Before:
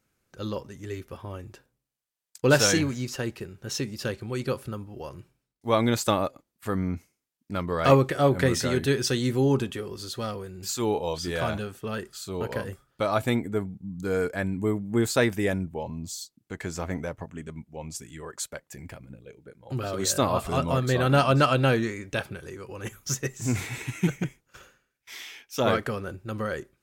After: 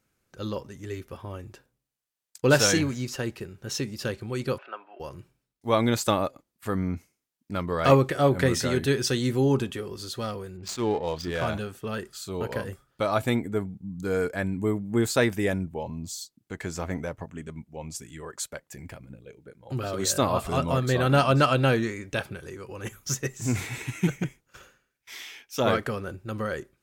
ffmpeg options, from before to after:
-filter_complex "[0:a]asettb=1/sr,asplit=3[a][b][c];[a]atrim=end=4.584[d];[b]atrim=start=4.58:end=5,asetpts=PTS-STARTPTS,afade=t=in:d=0.004:c=qsin,afade=t=out:st=0.416:d=0.004:c=qsin,highpass=f=450:w=0.5412,highpass=f=450:w=1.3066,equalizer=f=480:t=q:w=4:g=-7,equalizer=f=680:t=q:w=4:g=9,equalizer=f=980:t=q:w=4:g=4,equalizer=f=1.5k:t=q:w=4:g=9,equalizer=f=2.6k:t=q:w=4:g=8,lowpass=f=3.1k:w=0.5412,lowpass=f=3.1k:w=1.3066[e];[c]atrim=start=4.996[f];[d][e]acrossfade=d=0.004:c1=hsin:c2=qsin[g];[g][f]acrossfade=d=0.004:c1=qsin:c2=hsin,asplit=3[h][i][j];[h]afade=t=out:st=10.56:d=0.02[k];[i]adynamicsmooth=sensitivity=8:basefreq=1.5k,afade=t=in:st=10.56:d=0.02,afade=t=out:st=11.45:d=0.02[l];[j]afade=t=in:st=11.45:d=0.02[m];[k][l][m]amix=inputs=3:normalize=0"

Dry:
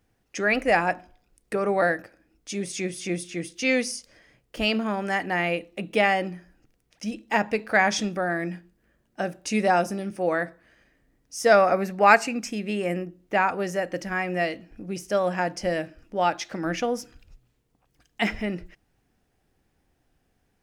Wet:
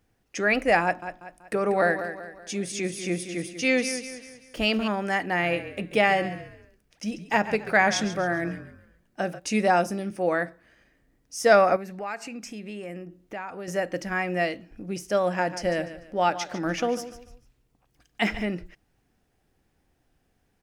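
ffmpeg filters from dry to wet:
-filter_complex "[0:a]asettb=1/sr,asplit=3[a][b][c];[a]atrim=end=0.834[d];[b]atrim=start=0.83:end=4.88,asetpts=PTS-STARTPTS,afade=t=in:d=0.004:c=qsin,afade=t=out:st=4.046:d=0.004:c=qsin,aecho=1:1:190|380|570|760:0.299|0.122|0.0502|0.0206,atrim=end_sample=178605[e];[c]atrim=start=4.876[f];[d][e]acrossfade=d=0.004:c1=hsin:c2=qsin[g];[g][f]acrossfade=d=0.004:c1=qsin:c2=hsin,asplit=3[h][i][j];[h]afade=t=out:st=5.41:d=0.02[k];[i]asplit=5[l][m][n][o][p];[m]adelay=136,afreqshift=-42,volume=-13dB[q];[n]adelay=272,afreqshift=-84,volume=-21.4dB[r];[o]adelay=408,afreqshift=-126,volume=-29.8dB[s];[p]adelay=544,afreqshift=-168,volume=-38.2dB[t];[l][q][r][s][t]amix=inputs=5:normalize=0,afade=t=in:st=5.41:d=0.02,afade=t=out:st=9.38:d=0.02[u];[j]afade=t=in:st=9.38:d=0.02[v];[k][u][v]amix=inputs=3:normalize=0,asettb=1/sr,asplit=3[w][x][y];[w]atrim=end=11.764[z];[x]atrim=start=11.76:end=13.68,asetpts=PTS-STARTPTS,afade=t=in:d=0.004:c=qsin,afade=t=out:st=1.916:d=0.004:c=qsin,acompressor=threshold=-38dB:ratio=2.5:attack=3.2:release=140:knee=1:detection=peak[aa];[y]atrim=start=13.676[ab];[z][aa]acrossfade=d=0.004:c1=hsin:c2=qsin[ac];[ac][ab]acrossfade=d=0.004:c1=qsin:c2=hsin,asettb=1/sr,asplit=3[ad][ae][af];[ad]atrim=end=15.224[ag];[ae]atrim=start=15.22:end=18.44,asetpts=PTS-STARTPTS,afade=t=in:d=0.004:c=qsin,afade=t=out:st=3.216:d=0.004:c=qsin,aecho=1:1:147|294|441:0.211|0.0697|0.023,atrim=end_sample=142002[ah];[af]atrim=start=18.436[ai];[ag][ah]acrossfade=d=0.004:c1=hsin:c2=qsin[aj];[aj][ai]acrossfade=d=0.004:c1=qsin:c2=hsin"

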